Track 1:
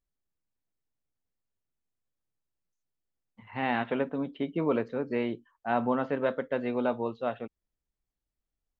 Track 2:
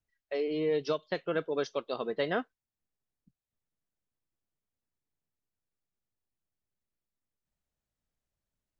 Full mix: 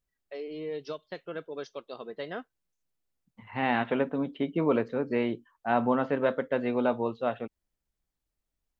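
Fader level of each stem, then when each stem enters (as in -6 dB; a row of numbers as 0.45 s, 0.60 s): +2.0 dB, -6.5 dB; 0.00 s, 0.00 s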